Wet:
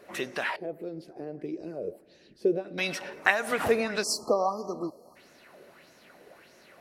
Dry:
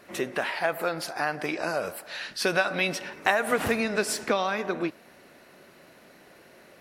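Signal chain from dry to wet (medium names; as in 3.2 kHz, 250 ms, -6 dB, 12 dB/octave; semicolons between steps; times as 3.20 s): 0.56–2.78 s: FFT filter 260 Hz 0 dB, 370 Hz +5 dB, 880 Hz -23 dB, 1.4 kHz -29 dB, 2 kHz -23 dB; 4.03–5.16 s: spectral selection erased 1.3–4.1 kHz; sweeping bell 1.6 Hz 440–6300 Hz +11 dB; trim -4.5 dB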